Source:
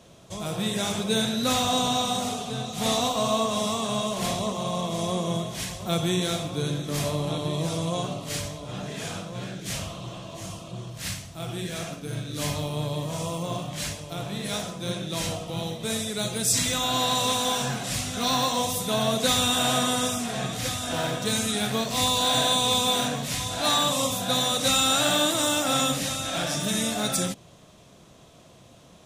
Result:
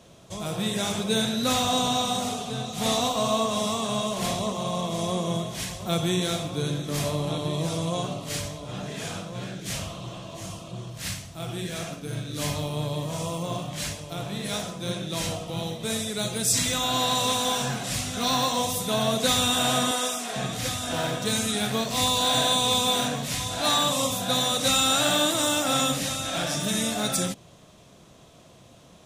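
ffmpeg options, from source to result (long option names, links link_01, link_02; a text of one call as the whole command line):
ffmpeg -i in.wav -filter_complex "[0:a]asettb=1/sr,asplit=3[link_01][link_02][link_03];[link_01]atrim=end=19.914[link_04];[link_02]atrim=start=19.91:end=20.36,asetpts=PTS-STARTPTS,afade=type=in:duration=0.004:curve=qsin,afade=type=out:start_time=0.446:duration=0.004:curve=qsin,highpass=370[link_05];[link_03]atrim=start=20.356[link_06];[link_04][link_05]acrossfade=duration=0.004:curve1=hsin:curve2=qsin[link_07];[link_07][link_06]acrossfade=duration=0.004:curve1=qsin:curve2=hsin" out.wav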